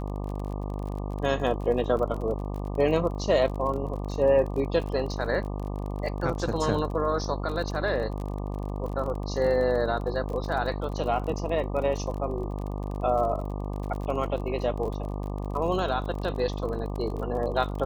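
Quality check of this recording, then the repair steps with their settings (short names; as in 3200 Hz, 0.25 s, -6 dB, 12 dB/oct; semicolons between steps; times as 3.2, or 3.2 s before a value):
buzz 50 Hz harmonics 24 -32 dBFS
crackle 34/s -34 dBFS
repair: de-click; de-hum 50 Hz, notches 24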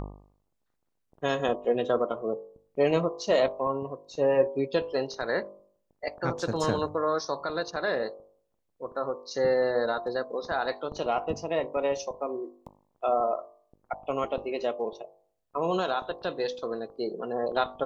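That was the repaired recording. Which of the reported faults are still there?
none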